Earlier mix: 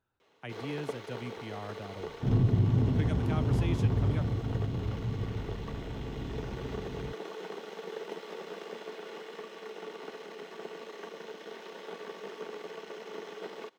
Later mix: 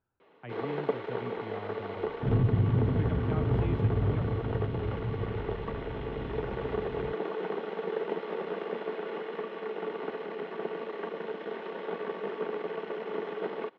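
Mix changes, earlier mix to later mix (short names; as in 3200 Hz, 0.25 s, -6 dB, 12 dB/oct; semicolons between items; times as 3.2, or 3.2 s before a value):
first sound +9.0 dB; master: add air absorption 490 m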